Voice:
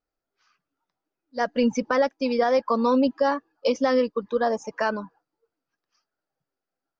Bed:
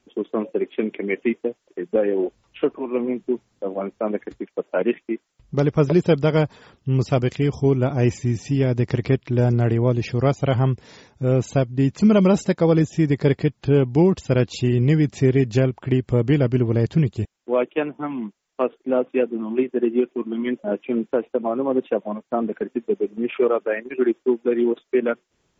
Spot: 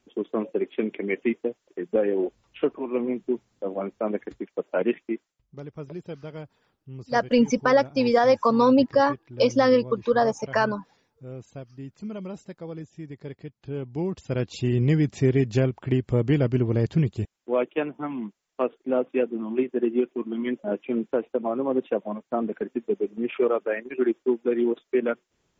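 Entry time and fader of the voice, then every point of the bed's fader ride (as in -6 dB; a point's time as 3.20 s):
5.75 s, +2.5 dB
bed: 5.22 s -3 dB
5.47 s -20 dB
13.37 s -20 dB
14.76 s -3.5 dB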